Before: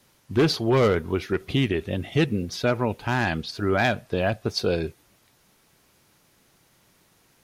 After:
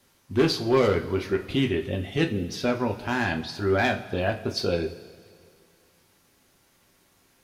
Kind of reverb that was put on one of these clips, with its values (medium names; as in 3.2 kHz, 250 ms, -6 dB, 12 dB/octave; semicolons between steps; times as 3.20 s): two-slope reverb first 0.29 s, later 2.2 s, from -18 dB, DRR 3 dB; trim -3 dB